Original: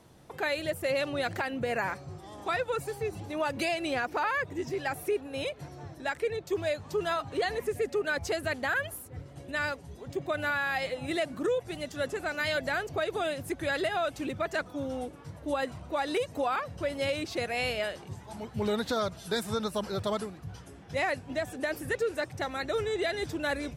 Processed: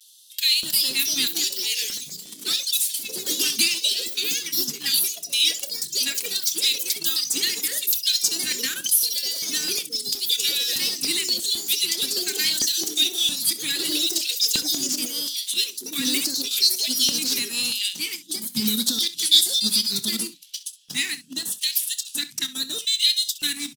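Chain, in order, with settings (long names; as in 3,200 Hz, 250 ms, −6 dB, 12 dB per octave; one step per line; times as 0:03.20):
Chebyshev band-stop filter 190–3,300 Hz, order 2
RIAA equalisation recording
transient designer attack +5 dB, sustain −5 dB
in parallel at −9.5 dB: log-companded quantiser 2 bits
on the sum: auto-filter notch square 1.6 Hz 550–2,200 Hz
pitch vibrato 0.66 Hz 50 cents
auto-filter high-pass square 0.79 Hz 230–3,300 Hz
delay with pitch and tempo change per echo 376 ms, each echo +3 semitones, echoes 3
on a send: ambience of single reflections 27 ms −15 dB, 65 ms −16 dB
on the sum: level +4.5 dB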